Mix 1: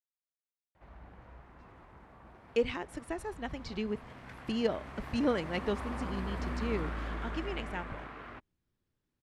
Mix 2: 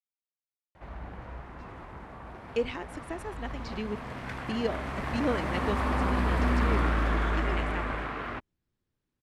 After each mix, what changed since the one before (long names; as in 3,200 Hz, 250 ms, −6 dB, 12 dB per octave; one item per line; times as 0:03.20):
background +11.0 dB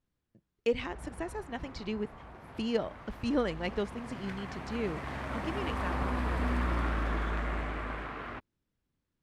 speech: entry −1.90 s
background −5.0 dB